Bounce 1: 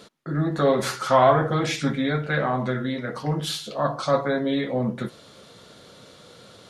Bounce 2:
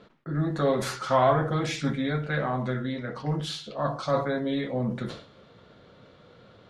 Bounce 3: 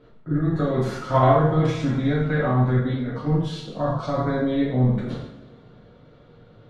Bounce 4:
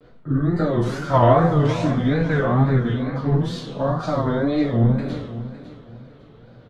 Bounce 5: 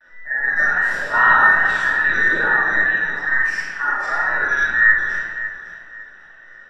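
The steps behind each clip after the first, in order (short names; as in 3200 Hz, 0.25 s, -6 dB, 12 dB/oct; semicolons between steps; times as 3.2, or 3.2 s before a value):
low-pass opened by the level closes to 2300 Hz, open at -19.5 dBFS; low shelf 100 Hz +8 dB; sustainer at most 110 dB/s; gain -5 dB
level quantiser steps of 10 dB; tilt -2.5 dB/oct; two-slope reverb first 0.59 s, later 2.1 s, DRR -5 dB
wow and flutter 150 cents; feedback echo 0.554 s, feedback 29%, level -14 dB; gain +2 dB
band inversion scrambler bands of 2000 Hz; shoebox room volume 880 m³, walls mixed, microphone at 2.5 m; gain -4 dB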